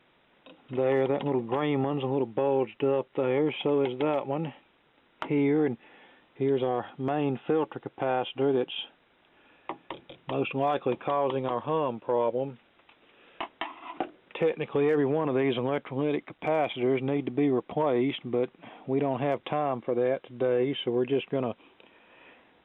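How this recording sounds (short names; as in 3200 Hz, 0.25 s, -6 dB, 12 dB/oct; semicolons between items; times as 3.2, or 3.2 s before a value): noise floor -65 dBFS; spectral tilt -5.5 dB/oct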